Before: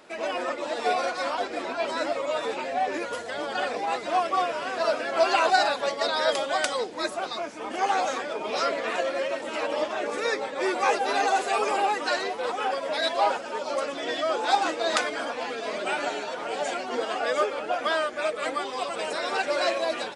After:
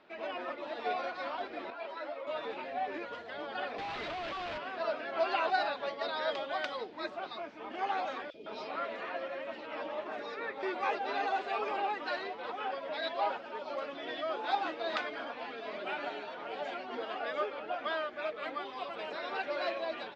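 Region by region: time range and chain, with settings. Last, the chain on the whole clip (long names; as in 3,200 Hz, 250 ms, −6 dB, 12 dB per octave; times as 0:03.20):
0:01.70–0:02.27: high-pass filter 440 Hz + spectral tilt −1.5 dB per octave + string-ensemble chorus
0:03.78–0:04.58: high-shelf EQ 2,200 Hz +10 dB + downward compressor, threshold −24 dBFS + comparator with hysteresis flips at −40.5 dBFS
0:08.30–0:10.63: high-shelf EQ 8,600 Hz −4 dB + three-band delay without the direct sound highs, lows, mids 40/160 ms, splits 430/3,000 Hz
whole clip: low-pass filter 4,000 Hz 24 dB per octave; notch filter 500 Hz, Q 12; level −9 dB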